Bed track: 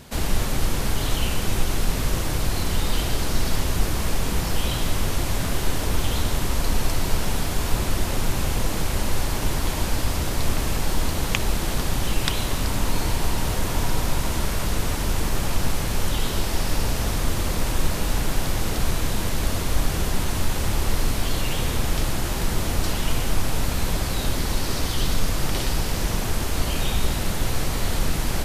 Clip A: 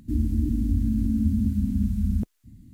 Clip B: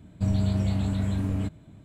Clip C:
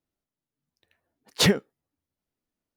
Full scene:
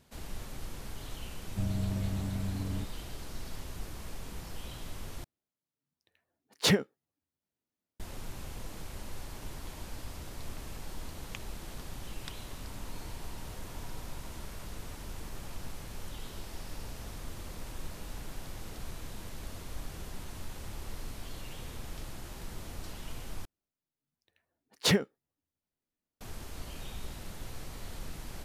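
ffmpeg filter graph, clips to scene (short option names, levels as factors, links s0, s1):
-filter_complex "[3:a]asplit=2[s0][s1];[0:a]volume=0.112[s2];[s0]highpass=74[s3];[s2]asplit=3[s4][s5][s6];[s4]atrim=end=5.244[s7];[s3]atrim=end=2.76,asetpts=PTS-STARTPTS,volume=0.562[s8];[s5]atrim=start=7.996:end=23.454[s9];[s1]atrim=end=2.76,asetpts=PTS-STARTPTS,volume=0.531[s10];[s6]atrim=start=26.206[s11];[2:a]atrim=end=1.84,asetpts=PTS-STARTPTS,volume=0.376,afade=t=in:d=0.004:c=hsin,afade=t=out:st=1.836:d=0.004:c=hsin,adelay=1360[s12];[s7][s8]acrossfade=d=0.004:c1=hsin:c2=hsin[s13];[s13][s9]acrossfade=d=0.004:c1=hsin:c2=hsin[s14];[s14][s10]acrossfade=d=0.004:c1=hsin:c2=hsin[s15];[s15][s11]acrossfade=d=0.004:c1=hsin:c2=hsin[s16];[s16][s12]amix=inputs=2:normalize=0"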